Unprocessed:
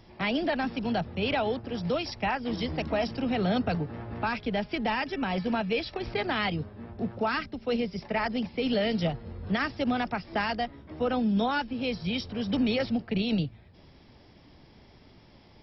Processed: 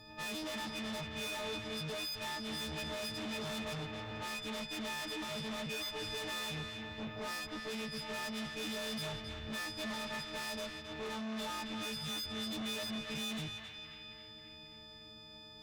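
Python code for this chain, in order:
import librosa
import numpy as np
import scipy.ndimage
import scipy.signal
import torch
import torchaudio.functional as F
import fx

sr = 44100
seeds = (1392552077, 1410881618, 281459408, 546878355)

y = fx.freq_snap(x, sr, grid_st=6)
y = fx.tube_stage(y, sr, drive_db=37.0, bias=0.4)
y = fx.echo_banded(y, sr, ms=269, feedback_pct=66, hz=2000.0, wet_db=-3.5)
y = y * librosa.db_to_amplitude(-2.5)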